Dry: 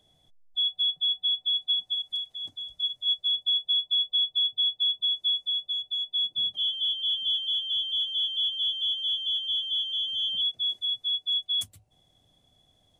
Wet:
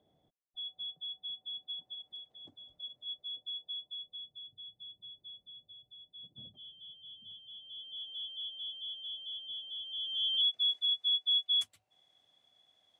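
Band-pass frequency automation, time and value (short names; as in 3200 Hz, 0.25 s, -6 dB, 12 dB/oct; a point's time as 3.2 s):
band-pass, Q 0.66
3.72 s 380 Hz
4.45 s 150 Hz
7.42 s 150 Hz
8.11 s 450 Hz
9.79 s 450 Hz
10.36 s 2000 Hz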